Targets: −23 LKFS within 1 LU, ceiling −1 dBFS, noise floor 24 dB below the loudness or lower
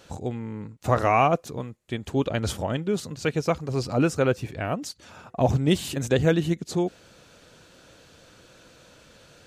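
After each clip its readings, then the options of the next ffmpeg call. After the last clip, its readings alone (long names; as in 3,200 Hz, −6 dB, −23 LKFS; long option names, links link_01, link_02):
integrated loudness −25.5 LKFS; sample peak −8.0 dBFS; target loudness −23.0 LKFS
→ -af "volume=2.5dB"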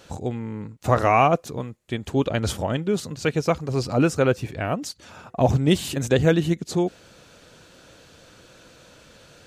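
integrated loudness −23.0 LKFS; sample peak −5.5 dBFS; background noise floor −52 dBFS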